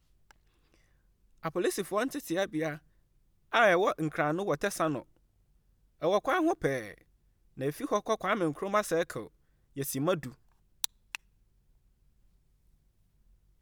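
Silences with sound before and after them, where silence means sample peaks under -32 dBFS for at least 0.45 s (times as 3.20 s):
2.74–3.54 s
4.99–6.03 s
6.83–7.61 s
9.20–9.78 s
10.27–10.84 s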